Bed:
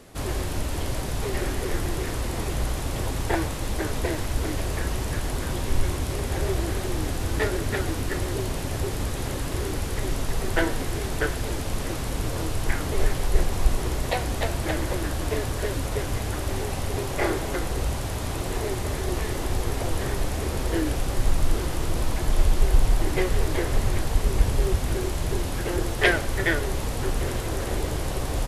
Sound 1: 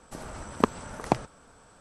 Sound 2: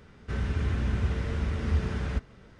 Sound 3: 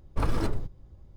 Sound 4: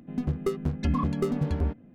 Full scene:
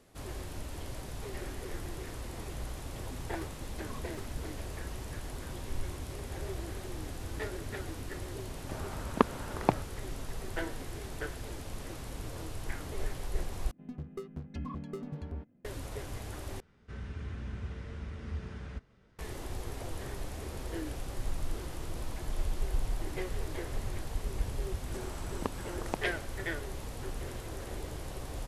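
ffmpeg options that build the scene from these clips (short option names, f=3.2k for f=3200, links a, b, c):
-filter_complex "[4:a]asplit=2[a][b];[1:a]asplit=2[c][d];[0:a]volume=-13dB[e];[a]tiltshelf=f=970:g=-5.5[f];[c]lowpass=3.8k[g];[d]acompressor=threshold=-42dB:ratio=2.5:attack=42:release=227:knee=1:detection=peak[h];[e]asplit=3[i][j][k];[i]atrim=end=13.714[l];[b]atrim=end=1.94,asetpts=PTS-STARTPTS,volume=-13.5dB[m];[j]atrim=start=15.646:end=16.604[n];[2:a]atrim=end=2.59,asetpts=PTS-STARTPTS,volume=-12dB[o];[k]atrim=start=19.186[p];[f]atrim=end=1.94,asetpts=PTS-STARTPTS,volume=-18dB,afade=t=in:d=0.004:c=hsin,afade=t=out:st=1.936:d=0.004:c=hsin,adelay=2950[q];[g]atrim=end=1.8,asetpts=PTS-STARTPTS,volume=-2dB,afade=t=in:d=0.004:c=hsin,afade=t=out:st=1.796:d=0.004:c=hsin,adelay=8570[r];[h]atrim=end=1.8,asetpts=PTS-STARTPTS,volume=-3.5dB,afade=t=in:d=0.004:c=hsin,afade=t=out:st=1.796:d=0.004:c=hsin,adelay=24820[s];[l][m]acrossfade=d=0.004:c1=hsin:c2=hsin[t];[t][n]acrossfade=d=0.004:c1=hsin:c2=hsin[u];[u][o]acrossfade=d=0.004:c1=hsin:c2=hsin[v];[v][p]acrossfade=d=0.004:c1=hsin:c2=hsin[w];[w][q][r][s]amix=inputs=4:normalize=0"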